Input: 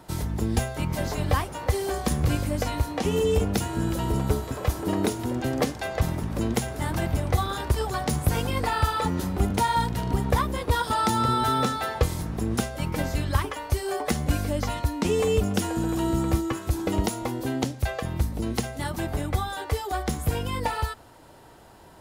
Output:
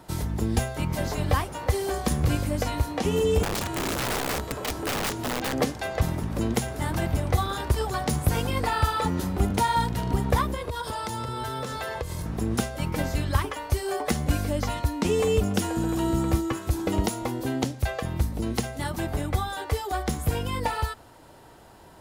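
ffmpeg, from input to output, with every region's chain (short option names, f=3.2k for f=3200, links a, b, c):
-filter_complex "[0:a]asettb=1/sr,asplit=3[a][b][c];[a]atrim=end=3.434[d];[b]atrim=start=3.43:end=5.53,asetpts=PTS-STARTPTS,afade=t=in:d=0.004:c=qsin,afade=t=out:st=2.096:d=0.004:c=qsin,acrossover=split=6900[e][f];[f]acompressor=threshold=-49dB:ratio=4:attack=1:release=60[g];[e][g]amix=inputs=2:normalize=0,aeval=exprs='(mod(13.3*val(0)+1,2)-1)/13.3':c=same[h];[c]atrim=start=5.526[i];[d][h]acrossfade=d=0.004:c1=hsin:c2=qsin[j];[j][i]acrossfade=d=0.004:c1=qsin:c2=hsin,asettb=1/sr,asplit=3[k][l][m];[k]atrim=end=10.544[n];[l]atrim=start=10.54:end=12.26,asetpts=PTS-STARTPTS,afade=t=in:d=0.004:c=qsin,afade=t=out:st=1.716:d=0.004:c=qsin,aecho=1:1:1.9:0.47,atrim=end_sample=75852,acompressor=threshold=-27dB:ratio=10:attack=3.2:release=140:knee=1:detection=peak[o];[m]atrim=start=12.256[p];[n][o]acrossfade=d=0.004:c1=hsin:c2=qsin[q];[q][p]acrossfade=d=0.004:c1=qsin:c2=hsin"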